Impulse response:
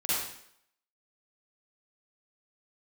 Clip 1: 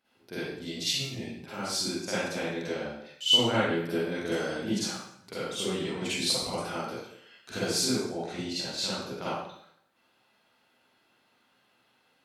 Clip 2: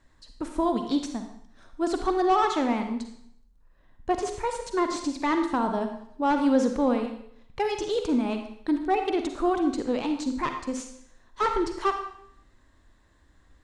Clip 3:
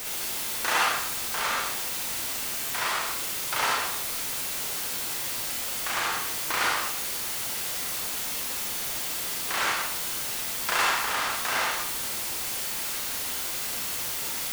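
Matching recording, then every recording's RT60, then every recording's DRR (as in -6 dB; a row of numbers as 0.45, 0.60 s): 1; 0.70, 0.70, 0.70 s; -11.5, 5.5, -2.5 dB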